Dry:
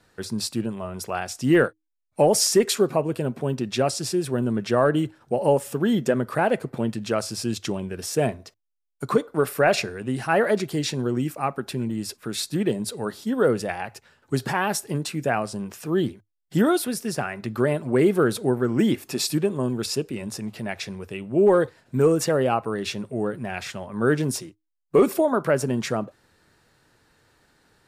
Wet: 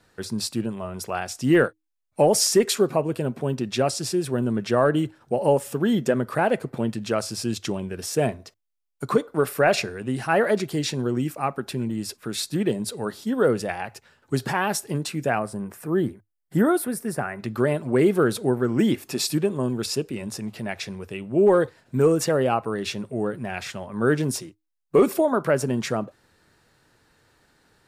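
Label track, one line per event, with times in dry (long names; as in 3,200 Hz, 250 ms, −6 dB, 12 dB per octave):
15.390000	17.390000	flat-topped bell 4,200 Hz −10 dB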